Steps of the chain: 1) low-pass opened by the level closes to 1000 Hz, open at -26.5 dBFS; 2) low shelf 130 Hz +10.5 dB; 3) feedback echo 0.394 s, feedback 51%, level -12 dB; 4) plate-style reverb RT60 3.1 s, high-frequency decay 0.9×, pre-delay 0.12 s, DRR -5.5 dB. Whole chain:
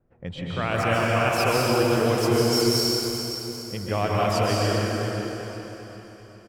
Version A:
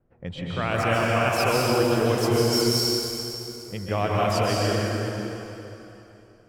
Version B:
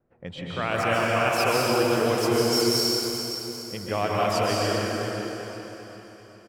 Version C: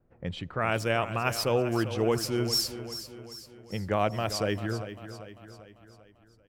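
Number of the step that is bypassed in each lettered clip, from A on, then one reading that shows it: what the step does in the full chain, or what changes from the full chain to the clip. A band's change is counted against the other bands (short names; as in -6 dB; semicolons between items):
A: 3, momentary loudness spread change -1 LU; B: 2, 125 Hz band -5.5 dB; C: 4, momentary loudness spread change +2 LU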